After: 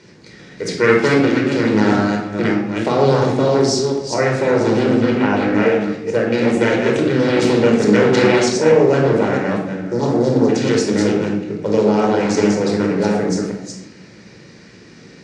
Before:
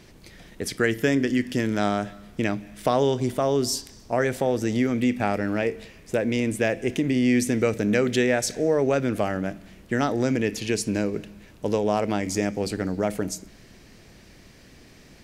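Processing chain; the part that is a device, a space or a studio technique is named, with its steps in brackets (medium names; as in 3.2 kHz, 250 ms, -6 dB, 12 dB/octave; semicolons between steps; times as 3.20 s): chunks repeated in reverse 218 ms, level -4 dB; 4.83–5.50 s: low-pass 5.4 kHz 12 dB/octave; 9.86–10.47 s: spectral replace 950–4800 Hz before; full-range speaker at full volume (loudspeaker Doppler distortion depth 0.72 ms; cabinet simulation 180–6900 Hz, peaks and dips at 630 Hz -4 dB, 990 Hz -4 dB, 3.1 kHz -6 dB); simulated room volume 1900 m³, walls furnished, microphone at 4.7 m; trim +3.5 dB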